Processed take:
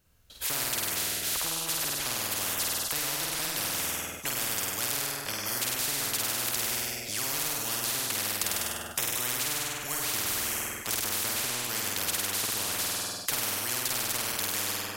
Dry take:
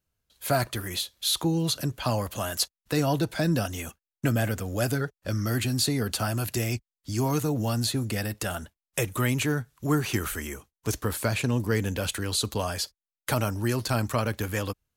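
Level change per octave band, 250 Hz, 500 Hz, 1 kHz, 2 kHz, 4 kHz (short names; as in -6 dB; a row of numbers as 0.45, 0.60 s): -14.5, -10.0, -3.5, 0.0, +1.5 dB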